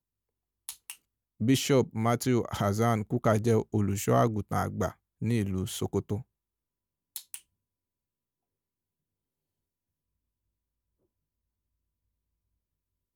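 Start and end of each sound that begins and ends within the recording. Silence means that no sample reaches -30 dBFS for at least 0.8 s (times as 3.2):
7.16–7.35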